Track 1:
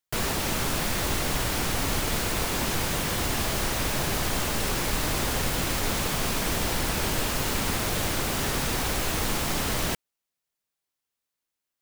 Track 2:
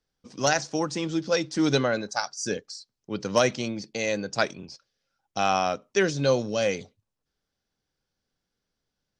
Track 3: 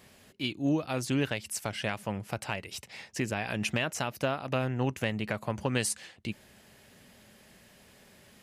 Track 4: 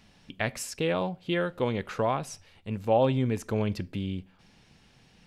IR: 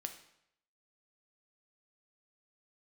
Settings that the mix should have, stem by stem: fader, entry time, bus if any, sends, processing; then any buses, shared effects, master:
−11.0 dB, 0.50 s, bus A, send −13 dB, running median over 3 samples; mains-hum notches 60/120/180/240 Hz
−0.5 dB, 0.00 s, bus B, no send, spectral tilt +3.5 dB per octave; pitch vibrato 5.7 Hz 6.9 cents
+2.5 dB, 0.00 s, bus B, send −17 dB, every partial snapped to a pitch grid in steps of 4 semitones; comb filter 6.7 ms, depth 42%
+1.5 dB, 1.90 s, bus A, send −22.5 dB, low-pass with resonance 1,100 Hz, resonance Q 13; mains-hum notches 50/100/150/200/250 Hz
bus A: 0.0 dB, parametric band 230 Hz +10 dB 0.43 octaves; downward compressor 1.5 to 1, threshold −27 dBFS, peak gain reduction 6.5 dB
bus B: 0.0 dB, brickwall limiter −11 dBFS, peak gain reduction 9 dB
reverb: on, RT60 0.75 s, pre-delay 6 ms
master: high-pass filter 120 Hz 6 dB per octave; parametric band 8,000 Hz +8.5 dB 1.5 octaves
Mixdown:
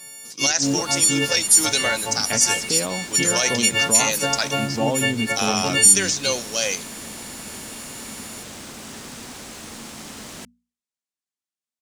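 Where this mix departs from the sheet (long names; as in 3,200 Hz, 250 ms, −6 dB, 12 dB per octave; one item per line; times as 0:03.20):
stem 1: send off
stem 4: missing low-pass with resonance 1,100 Hz, resonance Q 13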